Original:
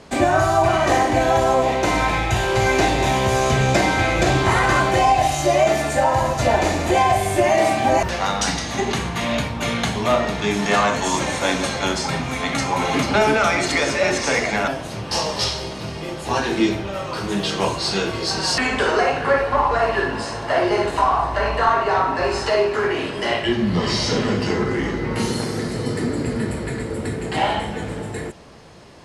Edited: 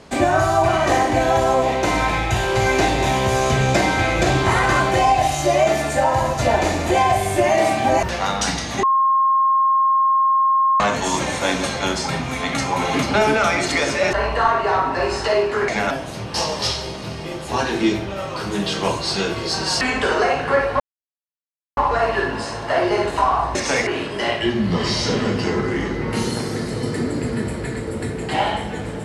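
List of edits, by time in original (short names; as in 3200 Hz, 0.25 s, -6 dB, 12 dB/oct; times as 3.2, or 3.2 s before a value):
8.83–10.8 bleep 1070 Hz -13 dBFS
14.13–14.45 swap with 21.35–22.9
19.57 insert silence 0.97 s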